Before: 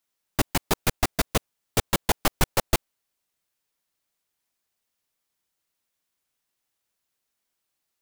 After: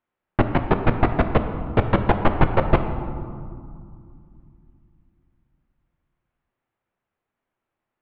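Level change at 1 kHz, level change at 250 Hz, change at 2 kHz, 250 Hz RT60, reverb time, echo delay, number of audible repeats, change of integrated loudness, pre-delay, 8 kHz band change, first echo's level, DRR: +6.5 dB, +8.5 dB, +2.0 dB, 3.7 s, 2.3 s, none, none, +4.0 dB, 6 ms, under -40 dB, none, 6.5 dB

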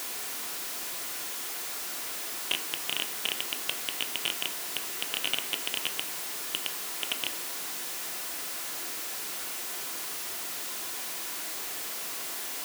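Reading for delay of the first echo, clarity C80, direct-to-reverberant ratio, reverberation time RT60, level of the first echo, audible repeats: none, 15.0 dB, 5.5 dB, 0.60 s, none, none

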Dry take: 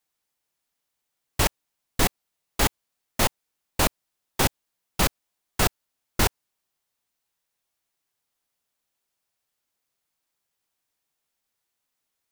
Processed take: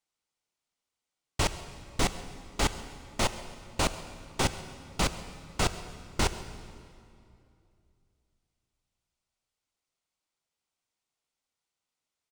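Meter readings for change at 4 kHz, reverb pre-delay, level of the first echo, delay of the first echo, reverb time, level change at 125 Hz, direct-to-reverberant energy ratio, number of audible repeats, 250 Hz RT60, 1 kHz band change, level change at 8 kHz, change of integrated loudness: -4.5 dB, 26 ms, -20.5 dB, 0.135 s, 2.6 s, -4.0 dB, 11.0 dB, 1, 3.0 s, -4.0 dB, -6.0 dB, -6.5 dB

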